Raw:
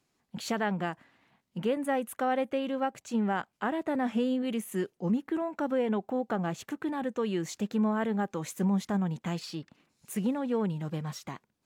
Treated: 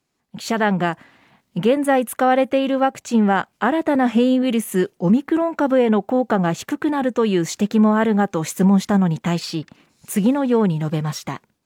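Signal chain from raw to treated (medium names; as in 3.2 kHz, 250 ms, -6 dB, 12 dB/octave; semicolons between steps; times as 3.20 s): level rider gain up to 11.5 dB; trim +1 dB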